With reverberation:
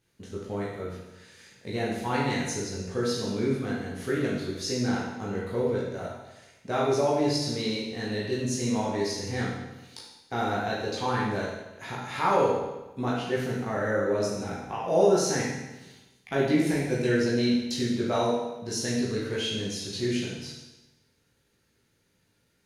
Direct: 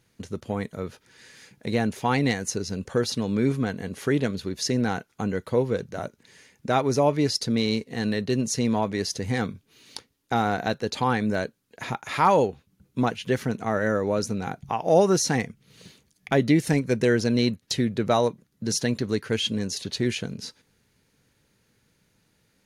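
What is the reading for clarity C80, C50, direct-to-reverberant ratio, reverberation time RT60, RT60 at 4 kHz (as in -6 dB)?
3.5 dB, 0.5 dB, -6.5 dB, 1.0 s, 1.0 s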